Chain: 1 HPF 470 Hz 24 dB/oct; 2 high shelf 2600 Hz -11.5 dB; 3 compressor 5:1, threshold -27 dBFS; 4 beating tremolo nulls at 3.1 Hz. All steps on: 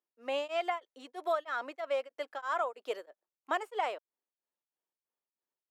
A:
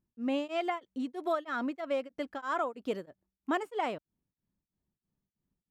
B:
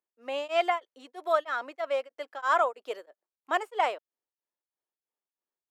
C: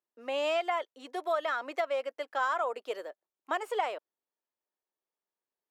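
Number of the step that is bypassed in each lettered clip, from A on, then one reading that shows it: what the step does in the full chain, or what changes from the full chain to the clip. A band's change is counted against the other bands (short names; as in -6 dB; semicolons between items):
1, 250 Hz band +15.5 dB; 3, mean gain reduction 3.0 dB; 4, momentary loudness spread change +2 LU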